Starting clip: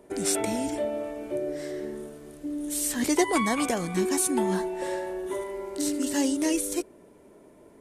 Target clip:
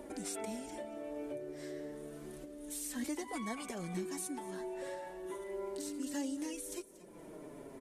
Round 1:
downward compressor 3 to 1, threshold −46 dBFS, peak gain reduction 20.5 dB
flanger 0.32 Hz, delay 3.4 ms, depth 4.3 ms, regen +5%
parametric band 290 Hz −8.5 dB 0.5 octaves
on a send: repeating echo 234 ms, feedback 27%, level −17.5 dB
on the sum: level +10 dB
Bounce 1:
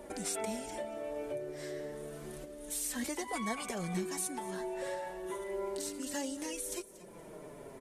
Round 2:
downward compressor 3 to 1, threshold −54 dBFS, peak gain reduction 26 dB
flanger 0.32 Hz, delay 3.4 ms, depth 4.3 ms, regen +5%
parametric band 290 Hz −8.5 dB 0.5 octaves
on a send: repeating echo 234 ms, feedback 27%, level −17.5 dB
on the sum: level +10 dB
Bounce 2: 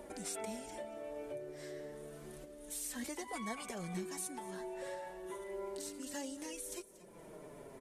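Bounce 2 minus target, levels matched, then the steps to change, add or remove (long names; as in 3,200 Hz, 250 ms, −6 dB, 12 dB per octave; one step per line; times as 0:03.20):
250 Hz band −3.5 dB
remove: parametric band 290 Hz −8.5 dB 0.5 octaves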